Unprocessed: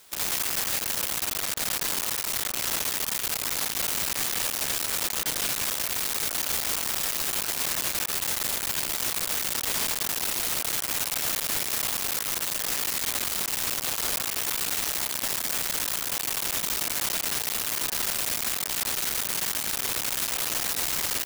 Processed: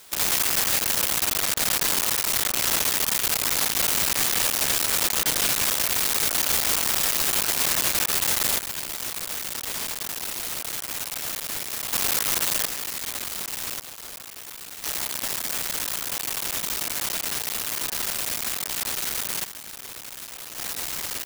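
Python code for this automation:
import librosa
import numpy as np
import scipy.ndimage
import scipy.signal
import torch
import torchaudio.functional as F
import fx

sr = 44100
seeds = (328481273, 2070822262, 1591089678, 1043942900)

y = fx.gain(x, sr, db=fx.steps((0.0, 5.0), (8.59, -3.0), (11.93, 5.0), (12.66, -3.0), (13.81, -11.0), (14.84, 0.0), (19.44, -10.0), (20.58, -3.0)))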